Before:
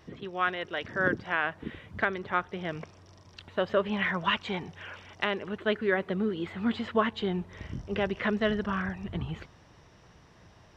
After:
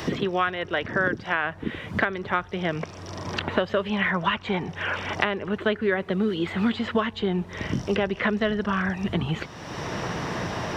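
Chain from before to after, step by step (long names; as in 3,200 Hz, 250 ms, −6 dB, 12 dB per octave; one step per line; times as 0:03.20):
multiband upward and downward compressor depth 100%
level +4 dB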